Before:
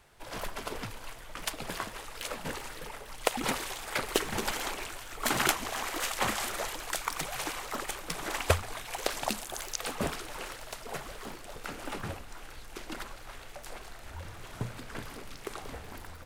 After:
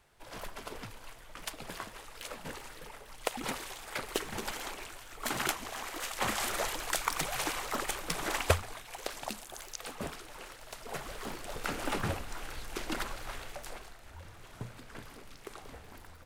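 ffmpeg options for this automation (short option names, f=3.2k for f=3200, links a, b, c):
-af "volume=13dB,afade=t=in:st=6.1:d=0.43:silence=0.446684,afade=t=out:st=8.29:d=0.54:silence=0.375837,afade=t=in:st=10.57:d=1.11:silence=0.266073,afade=t=out:st=13.3:d=0.67:silence=0.281838"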